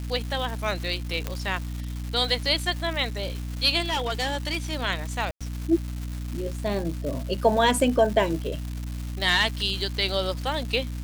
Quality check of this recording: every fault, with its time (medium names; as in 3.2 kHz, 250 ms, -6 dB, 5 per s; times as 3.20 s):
crackle 490 per s -32 dBFS
hum 60 Hz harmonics 5 -32 dBFS
1.27 s: pop -13 dBFS
3.85–4.57 s: clipped -22 dBFS
5.31–5.41 s: dropout 96 ms